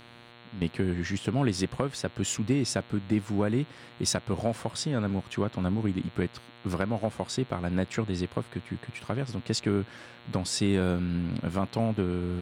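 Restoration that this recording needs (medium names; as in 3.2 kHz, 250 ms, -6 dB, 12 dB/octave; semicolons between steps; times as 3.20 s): de-hum 118.9 Hz, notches 36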